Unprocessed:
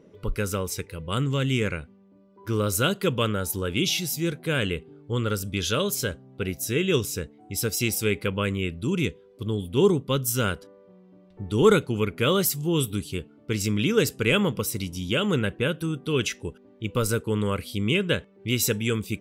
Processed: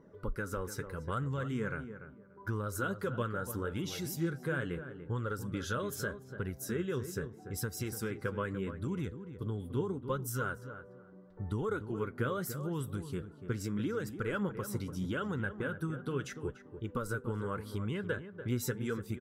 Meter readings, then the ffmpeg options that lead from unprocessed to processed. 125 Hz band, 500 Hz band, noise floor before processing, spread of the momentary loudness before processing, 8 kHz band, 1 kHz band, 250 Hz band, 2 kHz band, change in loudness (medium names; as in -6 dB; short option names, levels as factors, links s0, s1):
-9.5 dB, -12.0 dB, -54 dBFS, 10 LU, -15.0 dB, -8.0 dB, -10.5 dB, -10.0 dB, -11.5 dB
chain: -filter_complex "[0:a]highshelf=f=2000:t=q:w=3:g=-7.5,acompressor=threshold=0.0398:ratio=6,flanger=delay=1:depth=7.2:regen=42:speed=0.78:shape=sinusoidal,asplit=2[s0][s1];[s1]adelay=291,lowpass=f=1600:p=1,volume=0.316,asplit=2[s2][s3];[s3]adelay=291,lowpass=f=1600:p=1,volume=0.21,asplit=2[s4][s5];[s5]adelay=291,lowpass=f=1600:p=1,volume=0.21[s6];[s2][s4][s6]amix=inputs=3:normalize=0[s7];[s0][s7]amix=inputs=2:normalize=0"